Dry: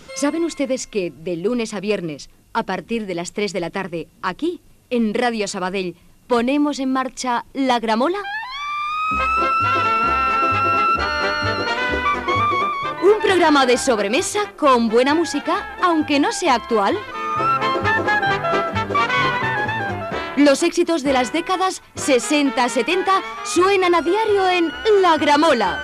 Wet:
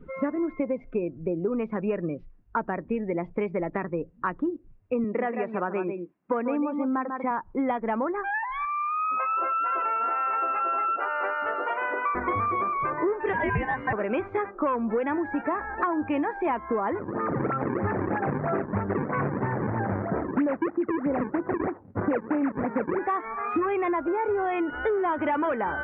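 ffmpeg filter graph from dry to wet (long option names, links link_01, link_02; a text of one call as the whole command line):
ffmpeg -i in.wav -filter_complex "[0:a]asettb=1/sr,asplit=3[link_01][link_02][link_03];[link_01]atrim=end=5.044[link_04];[link_02]atrim=start=5.04:end=7.31,asetpts=PTS-STARTPTS,afade=type=in:duration=0.004:curve=qsin,afade=type=out:start_time=2.266:duration=0.004:curve=qsin,highpass=200,lowpass=4100,aecho=1:1:145:0.376,atrim=end_sample=100107[link_05];[link_03]atrim=start=7.306[link_06];[link_04][link_05]acrossfade=duration=0.004:curve1=hsin:curve2=qsin[link_07];[link_07][link_06]acrossfade=duration=0.004:curve1=qsin:curve2=hsin,asettb=1/sr,asplit=3[link_08][link_09][link_10];[link_08]atrim=end=8.654[link_11];[link_09]atrim=start=8.65:end=12.15,asetpts=PTS-STARTPTS,afade=type=in:duration=0.004:curve=qsin,afade=type=out:start_time=3.496:duration=0.004:curve=qsin,highpass=620,equalizer=frequency=1800:width=1.4:gain=-7[link_12];[link_10]atrim=start=12.146[link_13];[link_11][link_12]acrossfade=duration=0.004:curve1=hsin:curve2=qsin[link_14];[link_14][link_13]acrossfade=duration=0.004:curve1=qsin:curve2=hsin,asettb=1/sr,asplit=3[link_15][link_16][link_17];[link_15]atrim=end=13.334[link_18];[link_16]atrim=start=13.33:end=13.93,asetpts=PTS-STARTPTS,afade=type=in:duration=0.004:curve=qsin,afade=type=out:start_time=0.596:duration=0.004:curve=qsin,aeval=exprs='val(0)*sin(2*PI*1300*n/s)':channel_layout=same,equalizer=frequency=130:width=0.49:gain=11[link_19];[link_17]atrim=start=13.926[link_20];[link_18][link_19]acrossfade=duration=0.004:curve1=hsin:curve2=qsin[link_21];[link_21][link_20]acrossfade=duration=0.004:curve1=qsin:curve2=hsin,asettb=1/sr,asplit=3[link_22][link_23][link_24];[link_22]atrim=end=16.994[link_25];[link_23]atrim=start=16.99:end=22.99,asetpts=PTS-STARTPTS,afade=type=in:duration=0.004:curve=qsin,afade=type=out:start_time=5.996:duration=0.004:curve=qsin,aemphasis=mode=reproduction:type=riaa,acrusher=samples=38:mix=1:aa=0.000001:lfo=1:lforange=60.8:lforate=3.1,highpass=150,lowpass=2300[link_26];[link_24]atrim=start=22.986[link_27];[link_25][link_26]acrossfade=duration=0.004:curve1=hsin:curve2=qsin[link_28];[link_28][link_27]acrossfade=duration=0.004:curve1=qsin:curve2=hsin,lowpass=frequency=2000:width=0.5412,lowpass=frequency=2000:width=1.3066,afftdn=noise_reduction=19:noise_floor=-38,acompressor=threshold=-24dB:ratio=6" out.wav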